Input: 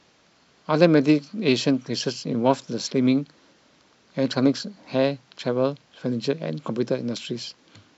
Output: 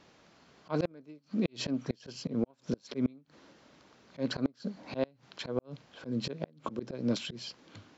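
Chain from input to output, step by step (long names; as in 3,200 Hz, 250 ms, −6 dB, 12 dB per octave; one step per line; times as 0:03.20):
high-shelf EQ 2,300 Hz −6 dB
volume swells 199 ms
gate with flip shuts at −18 dBFS, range −32 dB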